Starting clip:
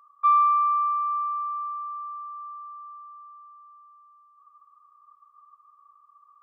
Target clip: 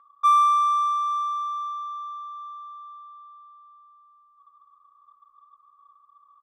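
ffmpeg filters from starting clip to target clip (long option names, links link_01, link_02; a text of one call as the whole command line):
ffmpeg -i in.wav -af "aecho=1:1:3.7:0.47,adynamicsmooth=sensitivity=7:basefreq=1800,volume=3dB" out.wav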